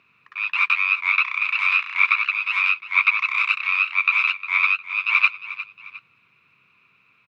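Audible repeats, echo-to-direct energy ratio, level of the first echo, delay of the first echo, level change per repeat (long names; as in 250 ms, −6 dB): 2, −14.0 dB, −14.5 dB, 356 ms, −8.0 dB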